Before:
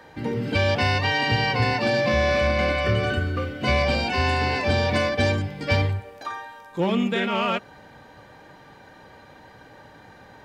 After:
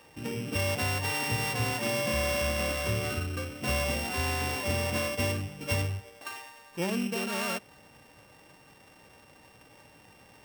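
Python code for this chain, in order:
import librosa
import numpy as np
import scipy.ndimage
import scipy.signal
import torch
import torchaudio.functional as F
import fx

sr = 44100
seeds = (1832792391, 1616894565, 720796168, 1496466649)

y = np.r_[np.sort(x[:len(x) // 16 * 16].reshape(-1, 16), axis=1).ravel(), x[len(x) // 16 * 16:]]
y = y * librosa.db_to_amplitude(-8.0)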